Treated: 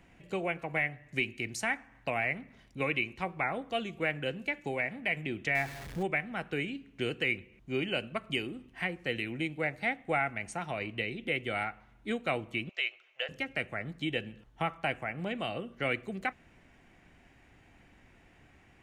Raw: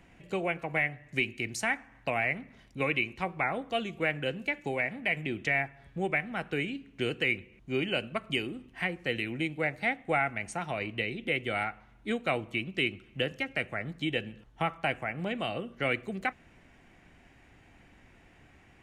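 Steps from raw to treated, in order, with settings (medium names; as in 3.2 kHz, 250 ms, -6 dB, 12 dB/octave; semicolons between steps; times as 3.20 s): 5.55–6.03 s: jump at every zero crossing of -37.5 dBFS; 12.69–13.29 s: elliptic band-pass 590–6800 Hz, stop band 40 dB; trim -2 dB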